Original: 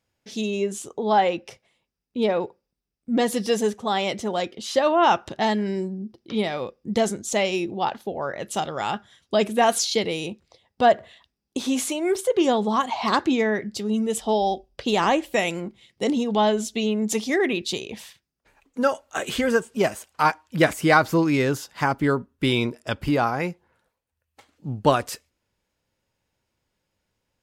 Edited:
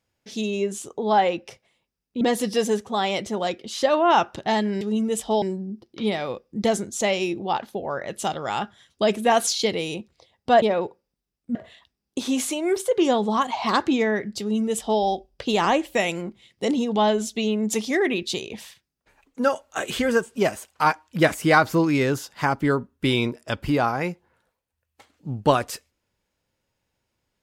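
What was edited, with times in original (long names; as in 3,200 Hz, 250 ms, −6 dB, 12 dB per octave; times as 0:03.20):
0:02.21–0:03.14: move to 0:10.94
0:13.79–0:14.40: duplicate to 0:05.74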